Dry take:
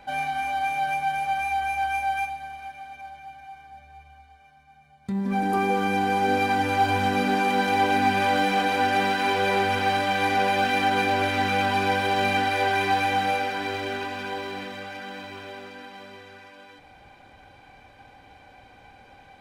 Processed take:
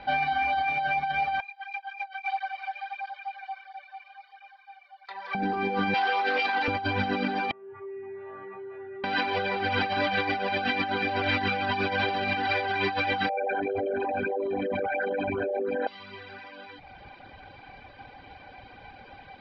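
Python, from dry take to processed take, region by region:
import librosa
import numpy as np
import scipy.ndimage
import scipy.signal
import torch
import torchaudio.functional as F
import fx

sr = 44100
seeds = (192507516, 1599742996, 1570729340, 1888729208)

y = fx.chain(x, sr, fx.cheby2_highpass(hz=270.0, order=4, stop_db=50),
    fx.over_compress(threshold_db=-33.0, ratio=-0.5),
    fx.flanger_cancel(hz=1.5, depth_ms=4.9), at=(1.4, 5.35))
y = fx.chain(y, sr, fx.self_delay(depth_ms=0.1),
    fx.bandpass_edges(low_hz=570.0, high_hz=7800.0),
    fx.doubler(ms=16.0, db=-14.0), at=(5.94, 6.68))
y = fx.chain(y, sr, fx.cheby2_lowpass(hz=8500.0, order=4, stop_db=80),
    fx.comb_fb(f0_hz=130.0, decay_s=1.3, harmonics='odd', damping=0.0, mix_pct=100),
    fx.env_flatten(amount_pct=70), at=(7.51, 9.04))
y = fx.chain(y, sr, fx.envelope_sharpen(power=3.0),
    fx.env_flatten(amount_pct=100), at=(13.29, 15.87))
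y = fx.dereverb_blind(y, sr, rt60_s=0.69)
y = fx.over_compress(y, sr, threshold_db=-29.0, ratio=-1.0)
y = scipy.signal.sosfilt(scipy.signal.ellip(4, 1.0, 50, 4800.0, 'lowpass', fs=sr, output='sos'), y)
y = y * librosa.db_to_amplitude(2.0)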